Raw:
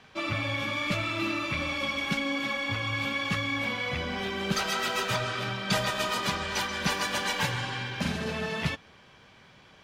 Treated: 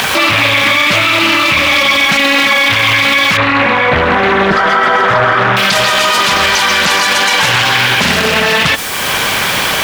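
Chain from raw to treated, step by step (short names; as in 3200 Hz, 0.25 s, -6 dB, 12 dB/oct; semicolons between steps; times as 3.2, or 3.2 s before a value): rattling part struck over -34 dBFS, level -27 dBFS; low shelf 430 Hz -12 dB; upward compressor, threshold -36 dBFS; added noise white -53 dBFS; 3.37–5.57 polynomial smoothing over 41 samples; maximiser +34 dB; Doppler distortion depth 0.61 ms; gain -1 dB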